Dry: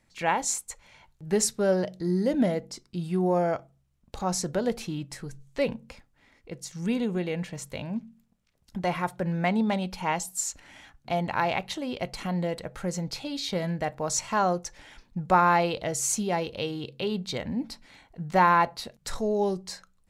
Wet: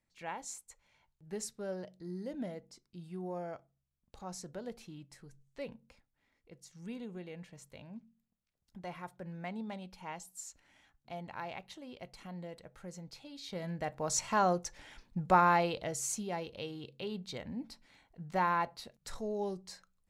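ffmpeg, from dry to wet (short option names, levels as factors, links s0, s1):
-af "volume=0.631,afade=t=in:st=13.37:d=0.88:silence=0.251189,afade=t=out:st=15.25:d=0.98:silence=0.473151"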